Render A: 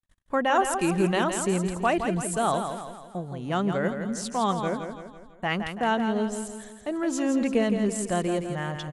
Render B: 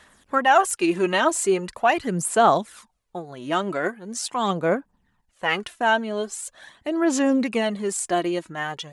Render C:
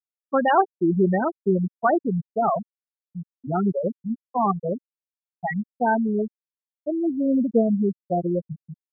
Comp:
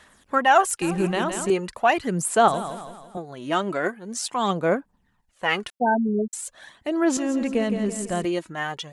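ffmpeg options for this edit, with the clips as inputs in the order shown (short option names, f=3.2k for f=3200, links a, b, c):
-filter_complex "[0:a]asplit=3[a][b][c];[1:a]asplit=5[d][e][f][g][h];[d]atrim=end=0.822[i];[a]atrim=start=0.818:end=1.502[j];[e]atrim=start=1.498:end=2.482[k];[b]atrim=start=2.478:end=3.172[l];[f]atrim=start=3.168:end=5.702[m];[2:a]atrim=start=5.698:end=6.332[n];[g]atrim=start=6.328:end=7.172[o];[c]atrim=start=7.168:end=8.252[p];[h]atrim=start=8.248[q];[i][j]acrossfade=d=0.004:c1=hsin:c2=hsin[r];[r][k]acrossfade=d=0.004:c1=hsin:c2=hsin[s];[s][l]acrossfade=d=0.004:c1=hsin:c2=hsin[t];[t][m]acrossfade=d=0.004:c1=hsin:c2=hsin[u];[u][n]acrossfade=d=0.004:c1=hsin:c2=hsin[v];[v][o]acrossfade=d=0.004:c1=hsin:c2=hsin[w];[w][p]acrossfade=d=0.004:c1=hsin:c2=hsin[x];[x][q]acrossfade=d=0.004:c1=hsin:c2=hsin"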